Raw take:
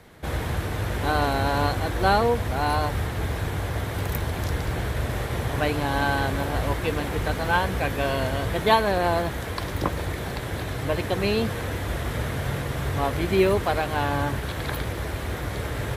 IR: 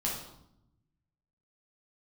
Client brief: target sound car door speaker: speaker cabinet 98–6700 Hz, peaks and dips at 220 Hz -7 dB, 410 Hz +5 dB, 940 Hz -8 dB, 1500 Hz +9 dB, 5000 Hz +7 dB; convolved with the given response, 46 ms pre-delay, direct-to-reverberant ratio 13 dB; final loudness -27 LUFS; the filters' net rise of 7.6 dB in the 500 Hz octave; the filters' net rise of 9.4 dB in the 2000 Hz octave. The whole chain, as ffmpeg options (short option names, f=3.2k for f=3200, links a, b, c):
-filter_complex "[0:a]equalizer=f=500:t=o:g=7,equalizer=f=2k:t=o:g=4,asplit=2[a][b];[1:a]atrim=start_sample=2205,adelay=46[c];[b][c]afir=irnorm=-1:irlink=0,volume=-18dB[d];[a][d]amix=inputs=2:normalize=0,highpass=98,equalizer=f=220:t=q:w=4:g=-7,equalizer=f=410:t=q:w=4:g=5,equalizer=f=940:t=q:w=4:g=-8,equalizer=f=1.5k:t=q:w=4:g=9,equalizer=f=5k:t=q:w=4:g=7,lowpass=f=6.7k:w=0.5412,lowpass=f=6.7k:w=1.3066,volume=-6dB"